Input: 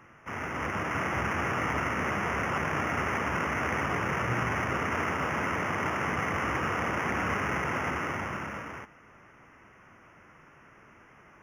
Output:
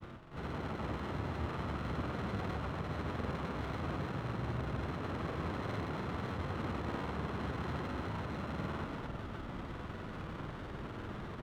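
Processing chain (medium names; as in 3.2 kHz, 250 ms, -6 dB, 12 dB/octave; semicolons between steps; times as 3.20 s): tilt EQ -2.5 dB/octave; reverse; compression 5:1, threshold -47 dBFS, peak gain reduction 23 dB; reverse; peak limiter -39.5 dBFS, peak gain reduction 5 dB; on a send: delay 231 ms -3 dB; on the sum: granulator, pitch spread up and down by 0 st; distance through air 170 m; sliding maximum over 9 samples; trim +10.5 dB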